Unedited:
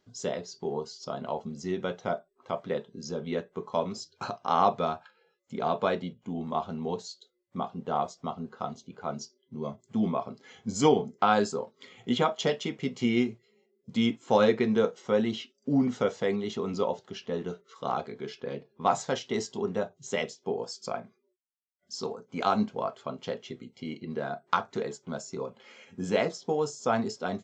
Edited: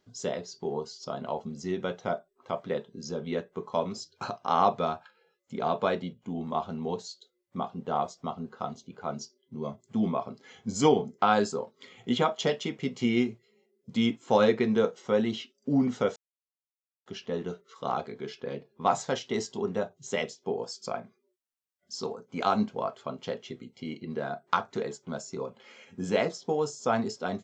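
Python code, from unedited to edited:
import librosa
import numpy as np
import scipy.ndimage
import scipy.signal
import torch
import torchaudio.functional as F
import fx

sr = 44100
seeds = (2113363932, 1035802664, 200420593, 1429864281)

y = fx.edit(x, sr, fx.silence(start_s=16.16, length_s=0.9), tone=tone)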